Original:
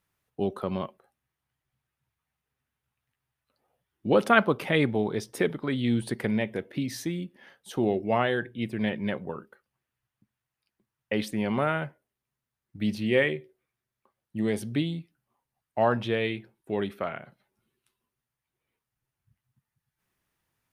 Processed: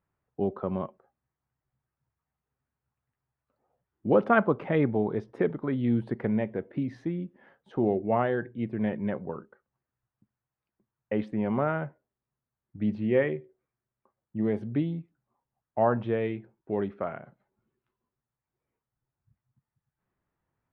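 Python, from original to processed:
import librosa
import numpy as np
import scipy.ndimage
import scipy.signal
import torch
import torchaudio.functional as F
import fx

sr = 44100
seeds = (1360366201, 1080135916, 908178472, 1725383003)

y = scipy.signal.sosfilt(scipy.signal.butter(2, 1300.0, 'lowpass', fs=sr, output='sos'), x)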